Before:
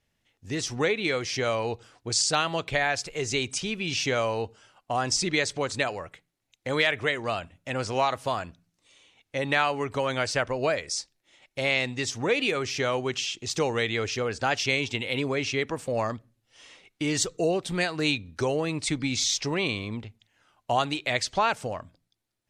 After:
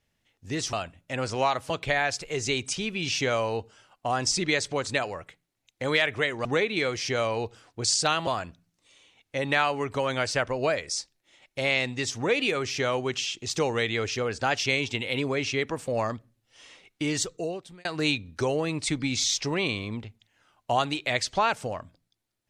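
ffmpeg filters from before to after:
-filter_complex "[0:a]asplit=6[a][b][c][d][e][f];[a]atrim=end=0.732[g];[b]atrim=start=7.298:end=8.272[h];[c]atrim=start=2.548:end=7.302[i];[d]atrim=start=0.728:end=2.552[j];[e]atrim=start=8.268:end=17.85,asetpts=PTS-STARTPTS,afade=t=out:st=8.752:d=0.83[k];[f]atrim=start=17.85,asetpts=PTS-STARTPTS,afade=t=in:d=0.004:c=hsin[l];[g][h]acrossfade=d=0.004:c1=hsin:c2=hsin[m];[m][i]acrossfade=d=0.004:c1=hsin:c2=hsin[n];[n][j]acrossfade=d=0.004:c1=hsin:c2=hsin[o];[k][l]concat=n=2:v=0:a=1[p];[o][p]acrossfade=d=0.004:c1=hsin:c2=hsin"

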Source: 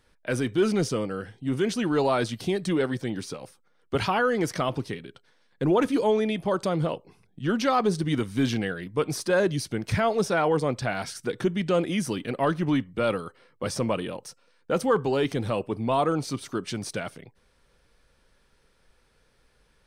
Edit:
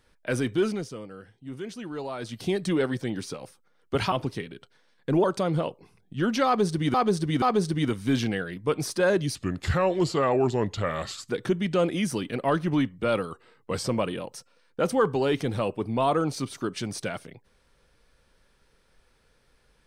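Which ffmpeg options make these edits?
-filter_complex "[0:a]asplit=11[a][b][c][d][e][f][g][h][i][j][k];[a]atrim=end=0.85,asetpts=PTS-STARTPTS,afade=t=out:st=0.54:d=0.31:silence=0.281838[l];[b]atrim=start=0.85:end=2.19,asetpts=PTS-STARTPTS,volume=-11dB[m];[c]atrim=start=2.19:end=4.122,asetpts=PTS-STARTPTS,afade=t=in:d=0.31:silence=0.281838[n];[d]atrim=start=4.648:end=5.772[o];[e]atrim=start=6.498:end=8.202[p];[f]atrim=start=7.718:end=8.202[q];[g]atrim=start=7.718:end=9.654[r];[h]atrim=start=9.65:end=11.24,asetpts=PTS-STARTPTS,asetrate=36162,aresample=44100[s];[i]atrim=start=11.236:end=13.264[t];[j]atrim=start=13.26:end=13.8,asetpts=PTS-STARTPTS,asetrate=41013,aresample=44100,atrim=end_sample=25606,asetpts=PTS-STARTPTS[u];[k]atrim=start=13.796[v];[l][m][n]concat=n=3:v=0:a=1[w];[w][o]acrossfade=d=0.004:c1=hsin:c2=hsin[x];[x][p]acrossfade=d=0.004:c1=hsin:c2=hsin[y];[y][q]acrossfade=d=0.004:c1=hsin:c2=hsin[z];[z][r]acrossfade=d=0.004:c1=hsin:c2=hsin[aa];[aa][s]acrossfade=d=0.004:c1=hsin:c2=hsin[ab];[ab][t]acrossfade=d=0.004:c1=hsin:c2=hsin[ac];[ac][u]acrossfade=d=0.004:c1=hsin:c2=hsin[ad];[ad][v]acrossfade=d=0.004:c1=hsin:c2=hsin"

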